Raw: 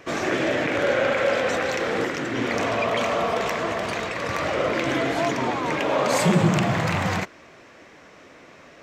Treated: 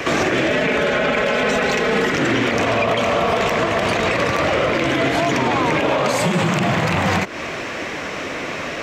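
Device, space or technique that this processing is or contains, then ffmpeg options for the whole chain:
mastering chain: -filter_complex "[0:a]asettb=1/sr,asplit=3[link_01][link_02][link_03];[link_01]atrim=end=0.504[link_04];[link_02]atrim=start=0.5:end=2.12,asetpts=PTS-STARTPTS,afade=type=in:duration=0.004:curve=qsin,afade=type=out:start_time=1.616:duration=0.004:curve=qsin,aecho=1:1:4.7:0.96,atrim=end_sample=71442[link_05];[link_03]atrim=start=2.116[link_06];[link_04][link_05]acrossfade=duration=0.004:curve1=hsin:curve2=qsin[link_07];[link_07][link_06]acrossfade=duration=0.004:curve1=qsin:curve2=hsin,equalizer=frequency=2700:width_type=o:width=0.88:gain=3.5,acrossover=split=150|810[link_08][link_09][link_10];[link_08]acompressor=threshold=-40dB:ratio=4[link_11];[link_09]acompressor=threshold=-31dB:ratio=4[link_12];[link_10]acompressor=threshold=-33dB:ratio=4[link_13];[link_11][link_12][link_13]amix=inputs=3:normalize=0,acompressor=threshold=-35dB:ratio=2,alimiter=level_in=29dB:limit=-1dB:release=50:level=0:latency=1,volume=-8.5dB"

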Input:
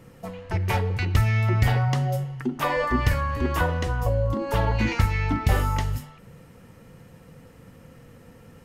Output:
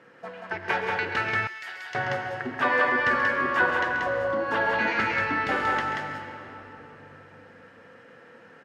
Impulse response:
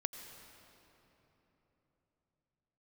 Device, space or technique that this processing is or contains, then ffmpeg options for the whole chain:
station announcement: -filter_complex "[0:a]highpass=360,lowpass=3800,equalizer=frequency=1600:width_type=o:width=0.36:gain=12,aecho=1:1:134.1|183.7:0.282|0.708[link_01];[1:a]atrim=start_sample=2205[link_02];[link_01][link_02]afir=irnorm=-1:irlink=0,asettb=1/sr,asplit=3[link_03][link_04][link_05];[link_03]atrim=end=1.474[link_06];[link_04]atrim=start=1.47:end=1.95,asetpts=PTS-STARTPTS,afade=type=in:duration=0.004:curve=qsin,afade=type=out:start_time=0.476:duration=0.004:curve=qsin,aderivative[link_07];[link_05]atrim=start=1.946[link_08];[link_06][link_07]acrossfade=duration=0.004:curve1=hsin:curve2=qsin[link_09];[link_09][link_08]acrossfade=duration=0.004:curve1=qsin:curve2=hsin"

